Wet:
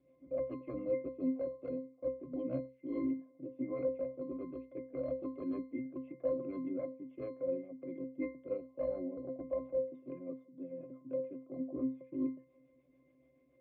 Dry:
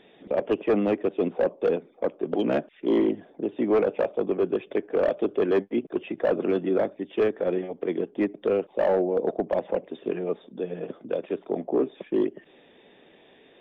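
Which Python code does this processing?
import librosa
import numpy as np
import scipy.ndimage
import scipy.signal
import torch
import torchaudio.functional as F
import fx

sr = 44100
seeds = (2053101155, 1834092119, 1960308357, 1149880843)

y = fx.rotary(x, sr, hz=7.0)
y = fx.octave_resonator(y, sr, note='C', decay_s=0.34)
y = F.gain(torch.from_numpy(y), 4.5).numpy()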